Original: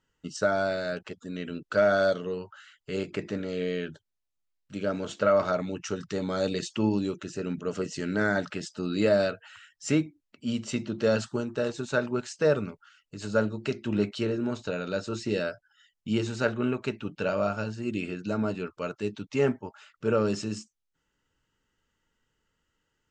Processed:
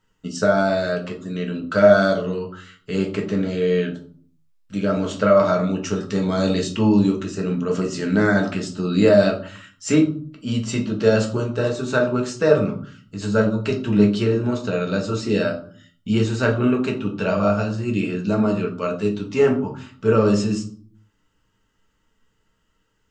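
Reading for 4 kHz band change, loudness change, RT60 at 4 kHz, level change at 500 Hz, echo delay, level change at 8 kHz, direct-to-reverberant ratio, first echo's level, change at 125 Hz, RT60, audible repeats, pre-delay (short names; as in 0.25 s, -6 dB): +6.5 dB, +8.5 dB, 0.35 s, +8.0 dB, none, +6.5 dB, 1.0 dB, none, +11.0 dB, 0.50 s, none, 4 ms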